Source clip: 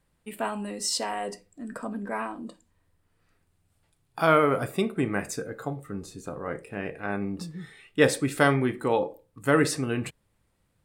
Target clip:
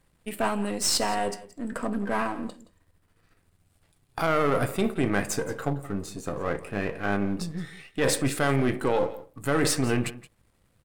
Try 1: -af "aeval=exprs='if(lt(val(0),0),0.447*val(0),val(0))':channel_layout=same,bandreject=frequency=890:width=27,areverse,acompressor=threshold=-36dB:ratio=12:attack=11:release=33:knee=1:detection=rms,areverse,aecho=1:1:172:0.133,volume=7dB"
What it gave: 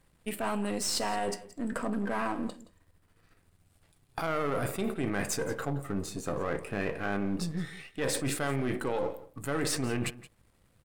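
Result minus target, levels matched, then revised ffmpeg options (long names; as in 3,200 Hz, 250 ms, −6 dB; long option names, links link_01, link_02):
downward compressor: peak gain reduction +7.5 dB
-af "aeval=exprs='if(lt(val(0),0),0.447*val(0),val(0))':channel_layout=same,bandreject=frequency=890:width=27,areverse,acompressor=threshold=-28dB:ratio=12:attack=11:release=33:knee=1:detection=rms,areverse,aecho=1:1:172:0.133,volume=7dB"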